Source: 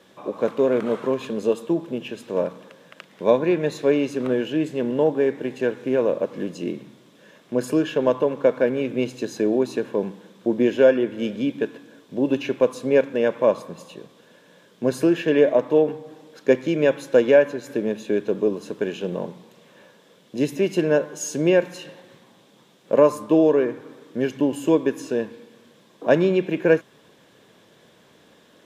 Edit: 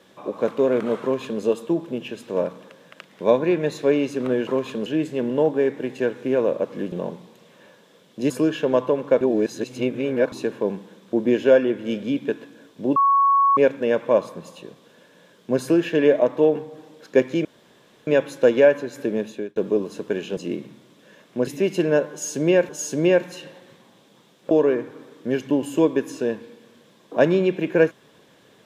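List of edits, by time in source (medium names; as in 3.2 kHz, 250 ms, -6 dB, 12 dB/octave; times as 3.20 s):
1.02–1.41 s: copy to 4.47 s
6.53–7.63 s: swap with 19.08–20.46 s
8.54–9.65 s: reverse
12.29–12.90 s: bleep 1.11 kHz -13.5 dBFS
16.78 s: insert room tone 0.62 s
17.95–18.27 s: fade out
21.11–21.68 s: loop, 2 plays
22.93–23.41 s: delete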